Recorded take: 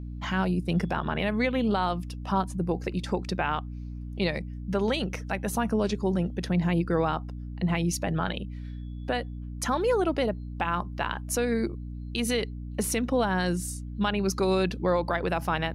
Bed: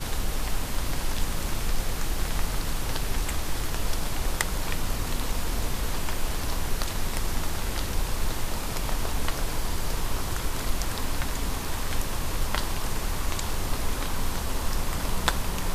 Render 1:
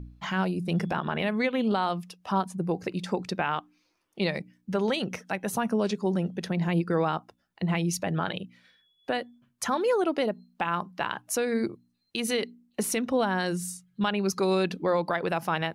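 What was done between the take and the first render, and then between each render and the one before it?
de-hum 60 Hz, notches 5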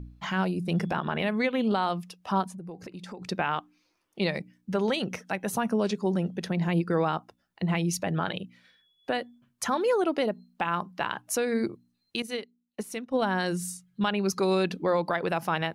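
2.48–3.22 compressor 4:1, threshold -39 dBFS; 12.22–13.22 upward expander 2.5:1, over -34 dBFS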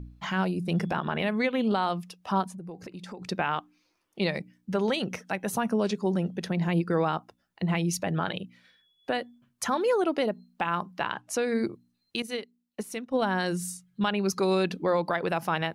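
11.02–11.45 Bessel low-pass 7500 Hz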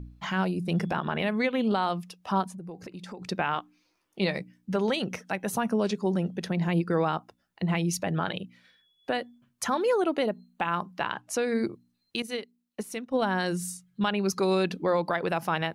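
3.52–4.76 doubler 16 ms -11 dB; 10–10.72 Butterworth band-stop 5200 Hz, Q 5.1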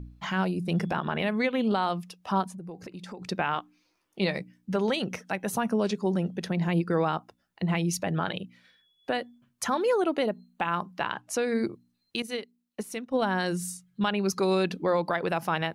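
nothing audible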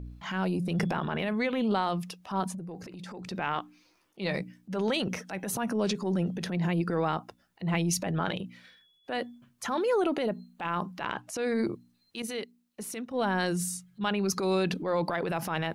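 limiter -18.5 dBFS, peak gain reduction 4 dB; transient shaper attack -8 dB, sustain +6 dB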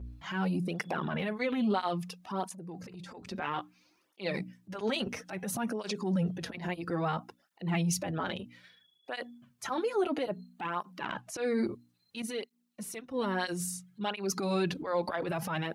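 tape flanging out of phase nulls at 0.6 Hz, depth 6.7 ms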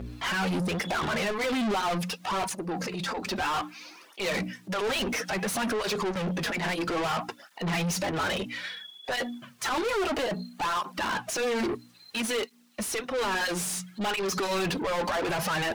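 overdrive pedal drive 34 dB, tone 6200 Hz, clips at -17.5 dBFS; flange 0.84 Hz, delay 1.5 ms, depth 3.7 ms, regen -65%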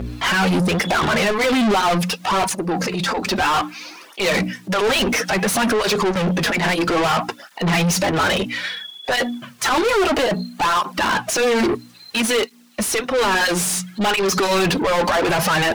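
gain +10.5 dB

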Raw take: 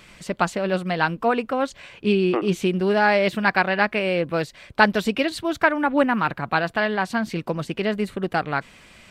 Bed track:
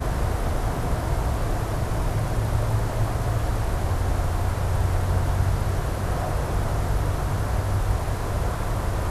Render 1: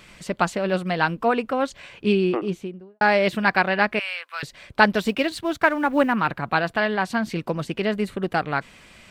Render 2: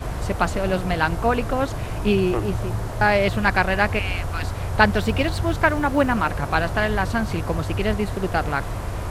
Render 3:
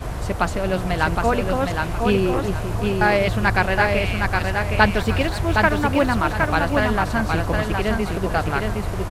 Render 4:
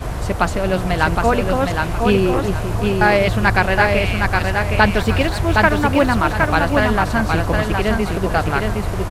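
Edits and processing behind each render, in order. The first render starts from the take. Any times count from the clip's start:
2.09–3.01 studio fade out; 3.99–4.43 HPF 1100 Hz 24 dB/oct; 4.98–6.13 G.711 law mismatch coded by A
add bed track -3 dB
feedback echo 0.765 s, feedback 27%, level -4 dB
gain +3.5 dB; limiter -1 dBFS, peak gain reduction 2.5 dB

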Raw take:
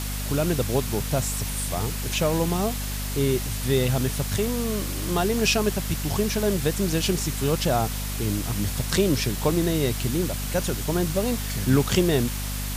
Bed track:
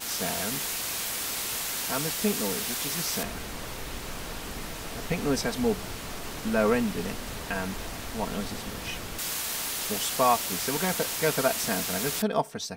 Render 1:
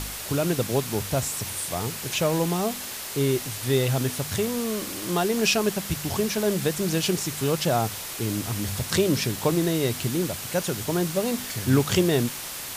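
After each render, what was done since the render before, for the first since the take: de-hum 50 Hz, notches 5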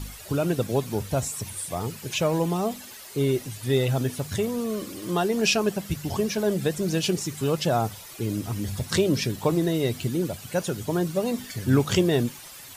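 denoiser 12 dB, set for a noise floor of -35 dBFS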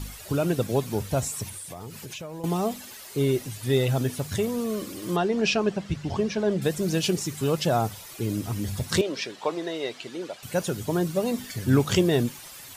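1.49–2.44 compressor, threshold -35 dBFS; 5.16–6.62 air absorption 110 m; 9.01–10.43 BPF 500–4900 Hz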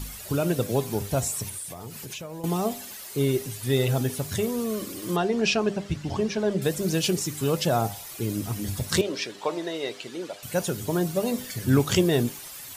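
high shelf 8500 Hz +6 dB; de-hum 100.4 Hz, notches 10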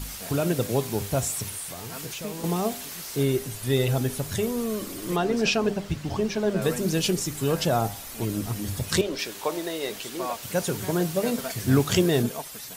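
add bed track -10 dB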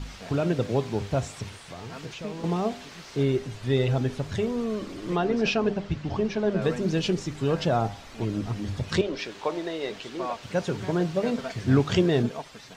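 air absorption 150 m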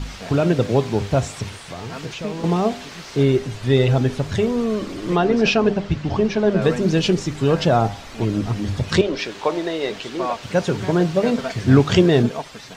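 gain +7.5 dB

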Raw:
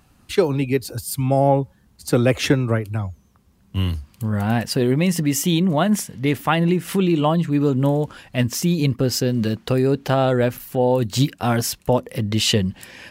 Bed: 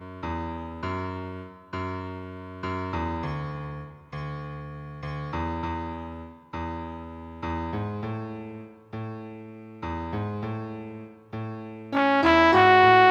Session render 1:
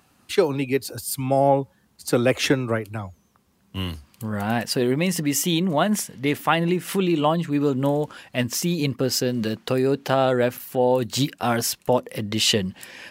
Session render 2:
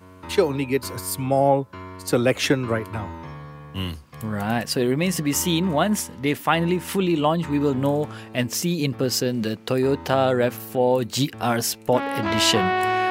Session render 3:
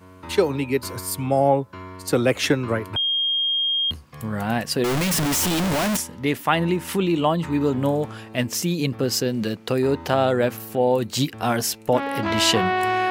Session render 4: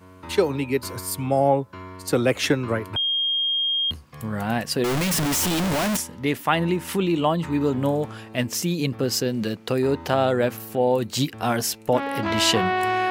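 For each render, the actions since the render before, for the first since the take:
HPF 270 Hz 6 dB/oct
add bed -6 dB
2.96–3.91 bleep 3230 Hz -19 dBFS; 4.84–5.97 infinite clipping
gain -1 dB

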